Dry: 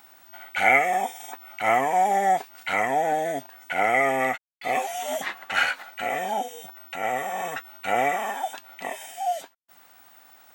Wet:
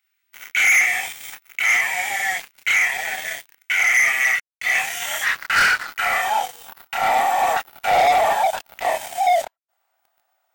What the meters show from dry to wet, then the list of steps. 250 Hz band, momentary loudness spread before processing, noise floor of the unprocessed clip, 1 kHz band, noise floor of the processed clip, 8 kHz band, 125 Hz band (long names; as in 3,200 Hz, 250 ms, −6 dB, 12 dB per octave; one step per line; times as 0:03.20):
−8.5 dB, 14 LU, −55 dBFS, +3.0 dB, −73 dBFS, +11.5 dB, can't be measured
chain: multi-voice chorus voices 2, 1 Hz, delay 27 ms, depth 3.7 ms
high-pass filter sweep 2,200 Hz → 670 Hz, 0:04.12–0:08.03
leveller curve on the samples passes 5
level −7 dB